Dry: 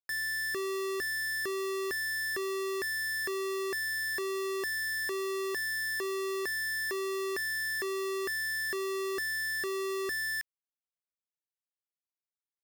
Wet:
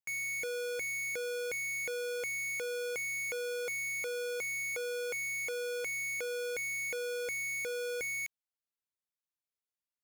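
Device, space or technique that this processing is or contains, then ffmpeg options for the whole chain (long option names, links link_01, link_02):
nightcore: -af "asetrate=55566,aresample=44100,volume=-3dB"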